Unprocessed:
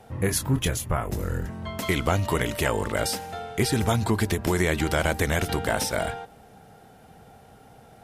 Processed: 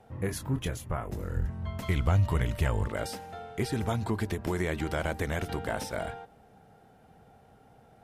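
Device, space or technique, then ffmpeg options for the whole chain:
behind a face mask: -filter_complex "[0:a]asplit=3[a][b][c];[a]afade=t=out:st=1.35:d=0.02[d];[b]asubboost=boost=6.5:cutoff=140,afade=t=in:st=1.35:d=0.02,afade=t=out:st=2.86:d=0.02[e];[c]afade=t=in:st=2.86:d=0.02[f];[d][e][f]amix=inputs=3:normalize=0,highshelf=f=3k:g=-7.5,volume=-6.5dB"

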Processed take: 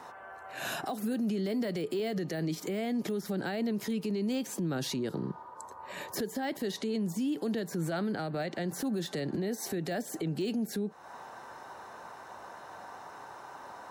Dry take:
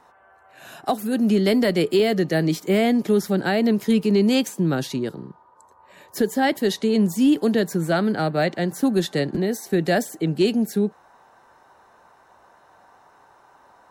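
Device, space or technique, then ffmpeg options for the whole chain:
broadcast voice chain: -af "highpass=85,deesser=0.7,acompressor=threshold=-32dB:ratio=4,equalizer=f=5.4k:t=o:w=0.77:g=2,alimiter=level_in=8.5dB:limit=-24dB:level=0:latency=1:release=72,volume=-8.5dB,volume=7dB"

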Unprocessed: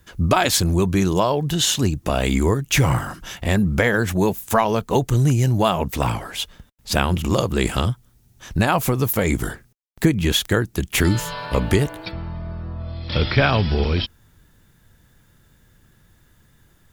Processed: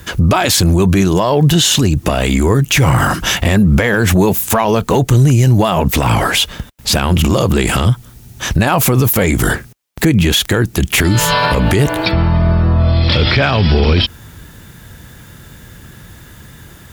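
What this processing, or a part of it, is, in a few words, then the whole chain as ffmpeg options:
mastering chain: -af "highpass=42,equalizer=f=2.6k:t=o:w=0.77:g=1.5,acompressor=threshold=-21dB:ratio=3,asoftclip=type=tanh:threshold=-11dB,alimiter=level_in=22.5dB:limit=-1dB:release=50:level=0:latency=1,volume=-3dB"

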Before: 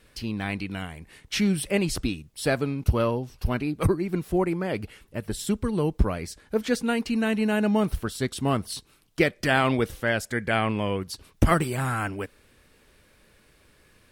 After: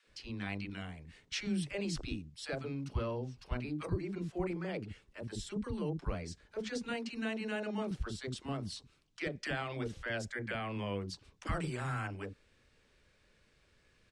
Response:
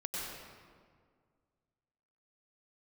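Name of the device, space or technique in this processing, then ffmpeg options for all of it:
clipper into limiter: -filter_complex "[0:a]asettb=1/sr,asplit=3[a][b][c];[a]atrim=end=6.864[d];[b]atrim=start=6.86:end=7.84,asetpts=PTS-STARTPTS,afade=t=in:d=0.004:c=qsin,afade=t=out:st=0.976:d=0.004:c=qsin,lowshelf=f=150:g=-11[e];[c]atrim=start=7.836[f];[d][e]acrossfade=d=0.004:c1=hsin:c2=qsin[g];[g][f]acrossfade=d=0.004:c1=qsin:c2=hsin,lowpass=f=7.6k:w=0.5412,lowpass=f=7.6k:w=1.3066,asoftclip=type=hard:threshold=-8.5dB,alimiter=limit=-16.5dB:level=0:latency=1:release=31,acrossover=split=290|930[h][i][j];[i]adelay=30[k];[h]adelay=70[l];[l][k][j]amix=inputs=3:normalize=0,volume=-9dB"

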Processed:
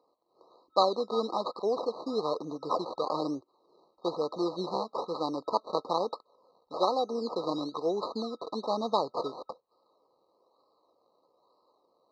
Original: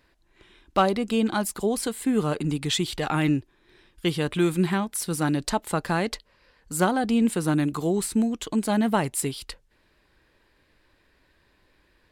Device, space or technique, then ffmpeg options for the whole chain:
circuit-bent sampling toy: -filter_complex "[0:a]acrusher=samples=20:mix=1:aa=0.000001:lfo=1:lforange=12:lforate=1.1,highpass=430,equalizer=f=500:t=q:w=4:g=8,equalizer=f=1k:t=q:w=4:g=4,equalizer=f=1.5k:t=q:w=4:g=5,equalizer=f=2.5k:t=q:w=4:g=-9,equalizer=f=4k:t=q:w=4:g=7,lowpass=f=4.2k:w=0.5412,lowpass=f=4.2k:w=1.3066,asettb=1/sr,asplit=3[a][b][c];[a]atrim=end=6.764[d];[b]atrim=start=6.76:end=7.32,asetpts=PTS-STARTPTS,afade=t=in:d=0.004:c=qsin,afade=t=out:st=0.556:d=0.004:c=qsin,highpass=230[e];[c]atrim=start=7.316[f];[d][e]acrossfade=d=0.004:c1=hsin:c2=qsin[g];[g][f]acrossfade=d=0.004:c1=qsin:c2=hsin,afftfilt=real='re*(1-between(b*sr/4096,1300,3800))':imag='im*(1-between(b*sr/4096,1300,3800))':win_size=4096:overlap=0.75,volume=-3.5dB"

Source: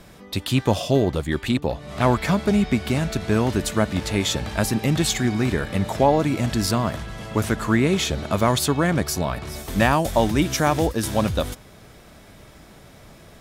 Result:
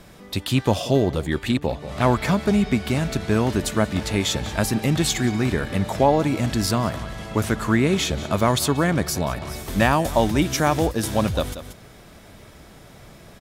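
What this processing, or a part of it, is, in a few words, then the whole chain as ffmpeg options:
ducked delay: -filter_complex "[0:a]asplit=3[a][b][c];[b]adelay=183,volume=-6.5dB[d];[c]apad=whole_len=599129[e];[d][e]sidechaincompress=threshold=-32dB:ratio=8:attack=23:release=298[f];[a][f]amix=inputs=2:normalize=0"

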